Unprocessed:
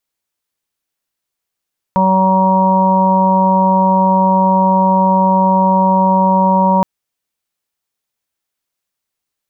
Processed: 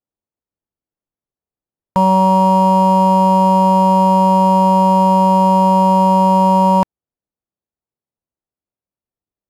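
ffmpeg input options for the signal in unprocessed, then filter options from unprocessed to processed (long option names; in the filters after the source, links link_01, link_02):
-f lavfi -i "aevalsrc='0.224*sin(2*PI*189*t)+0.0266*sin(2*PI*378*t)+0.141*sin(2*PI*567*t)+0.0501*sin(2*PI*756*t)+0.282*sin(2*PI*945*t)+0.0355*sin(2*PI*1134*t)':duration=4.87:sample_rate=44100"
-af "adynamicsmooth=sensitivity=6.5:basefreq=700" -ar 32000 -c:a libvorbis -b:a 128k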